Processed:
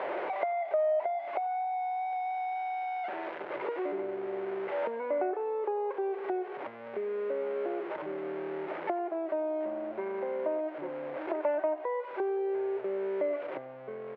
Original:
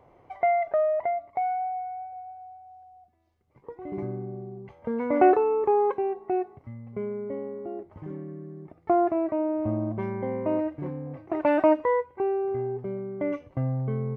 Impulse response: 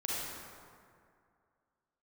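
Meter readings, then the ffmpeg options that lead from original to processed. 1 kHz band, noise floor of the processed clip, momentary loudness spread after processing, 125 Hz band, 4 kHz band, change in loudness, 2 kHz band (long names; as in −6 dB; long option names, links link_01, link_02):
−5.0 dB, −43 dBFS, 6 LU, below −25 dB, can't be measured, −6.5 dB, −2.5 dB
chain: -filter_complex "[0:a]aeval=exprs='val(0)+0.5*0.0224*sgn(val(0))':channel_layout=same,acompressor=threshold=-36dB:ratio=6,highpass=frequency=250:width=0.5412,highpass=frequency=250:width=1.3066,equalizer=frequency=250:width_type=q:width=4:gain=-9,equalizer=frequency=380:width_type=q:width=4:gain=6,equalizer=frequency=590:width_type=q:width=4:gain=10,equalizer=frequency=920:width_type=q:width=4:gain=5,equalizer=frequency=1500:width_type=q:width=4:gain=5,equalizer=frequency=2100:width_type=q:width=4:gain=4,lowpass=frequency=2700:width=0.5412,lowpass=frequency=2700:width=1.3066,asplit=6[link_01][link_02][link_03][link_04][link_05][link_06];[link_02]adelay=90,afreqshift=64,volume=-20dB[link_07];[link_03]adelay=180,afreqshift=128,volume=-24.9dB[link_08];[link_04]adelay=270,afreqshift=192,volume=-29.8dB[link_09];[link_05]adelay=360,afreqshift=256,volume=-34.6dB[link_10];[link_06]adelay=450,afreqshift=320,volume=-39.5dB[link_11];[link_01][link_07][link_08][link_09][link_10][link_11]amix=inputs=6:normalize=0"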